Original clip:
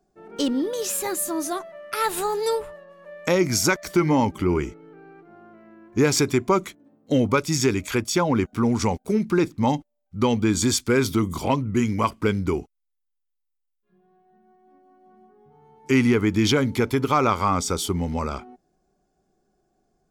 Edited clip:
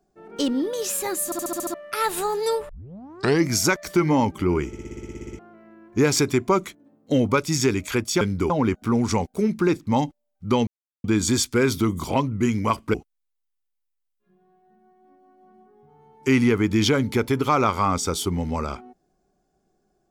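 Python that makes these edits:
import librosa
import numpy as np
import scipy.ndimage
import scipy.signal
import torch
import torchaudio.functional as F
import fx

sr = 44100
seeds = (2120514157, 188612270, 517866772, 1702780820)

y = fx.edit(x, sr, fx.stutter_over(start_s=1.25, slice_s=0.07, count=7),
    fx.tape_start(start_s=2.69, length_s=0.79),
    fx.stutter_over(start_s=4.67, slice_s=0.06, count=12),
    fx.insert_silence(at_s=10.38, length_s=0.37),
    fx.move(start_s=12.28, length_s=0.29, to_s=8.21), tone=tone)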